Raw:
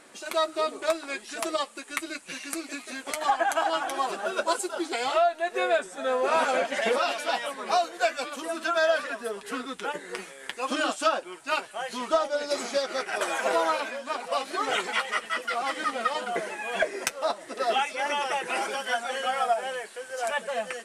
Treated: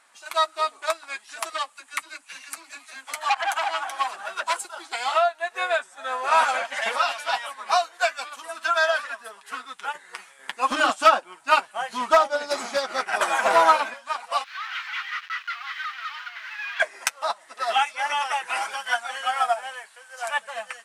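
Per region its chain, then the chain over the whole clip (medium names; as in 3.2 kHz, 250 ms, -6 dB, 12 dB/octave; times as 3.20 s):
1.50–4.65 s: phase dispersion lows, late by 47 ms, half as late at 470 Hz + transformer saturation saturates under 3 kHz
10.39–13.94 s: peaking EQ 220 Hz +14.5 dB 2.7 oct + hard clipper -13 dBFS
14.44–16.80 s: companded quantiser 2-bit + high-pass 1.4 kHz 24 dB/octave + distance through air 270 m
whole clip: resonant low shelf 610 Hz -13.5 dB, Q 1.5; upward expansion 1.5:1, over -43 dBFS; trim +7 dB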